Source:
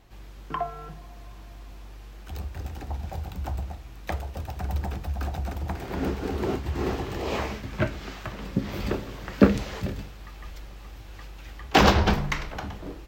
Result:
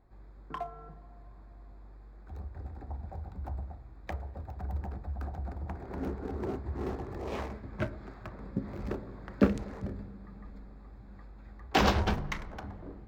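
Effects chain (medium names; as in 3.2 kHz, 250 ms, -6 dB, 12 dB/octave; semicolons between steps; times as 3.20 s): local Wiener filter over 15 samples; on a send: reverberation RT60 3.5 s, pre-delay 3 ms, DRR 18 dB; on the sum: trim -7.5 dB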